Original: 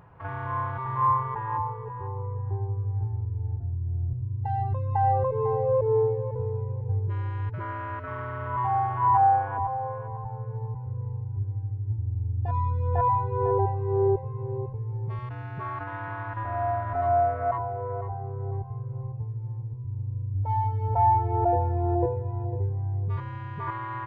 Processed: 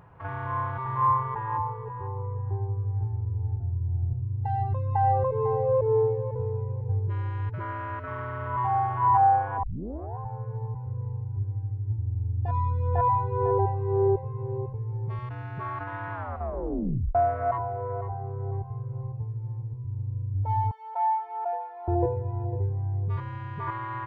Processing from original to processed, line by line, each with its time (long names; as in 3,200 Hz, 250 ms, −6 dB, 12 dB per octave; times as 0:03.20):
0:02.77–0:03.71: delay throw 490 ms, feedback 60%, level −12.5 dB
0:09.63: tape start 0.55 s
0:16.13: tape stop 1.02 s
0:20.71–0:21.88: Bessel high-pass filter 1,000 Hz, order 8